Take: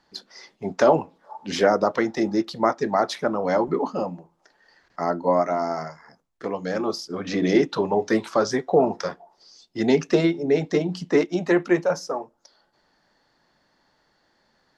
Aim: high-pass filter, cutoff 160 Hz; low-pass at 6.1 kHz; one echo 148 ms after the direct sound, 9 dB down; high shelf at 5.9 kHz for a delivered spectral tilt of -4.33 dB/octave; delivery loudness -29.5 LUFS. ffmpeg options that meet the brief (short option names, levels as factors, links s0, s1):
-af "highpass=160,lowpass=6100,highshelf=f=5900:g=3.5,aecho=1:1:148:0.355,volume=0.473"